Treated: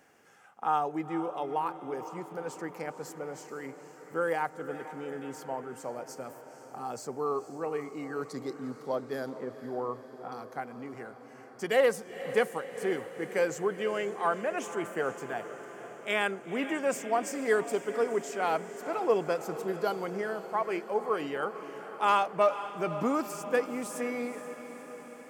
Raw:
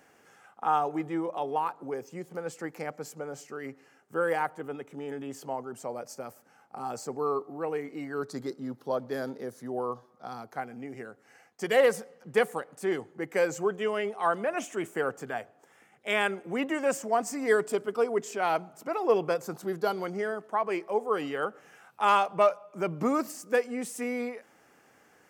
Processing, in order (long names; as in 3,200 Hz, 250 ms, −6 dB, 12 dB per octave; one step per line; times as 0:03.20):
0:09.33–0:10.32: Butterworth low-pass 3,000 Hz
on a send: feedback delay with all-pass diffusion 483 ms, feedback 66%, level −12.5 dB
on the sum: level −2 dB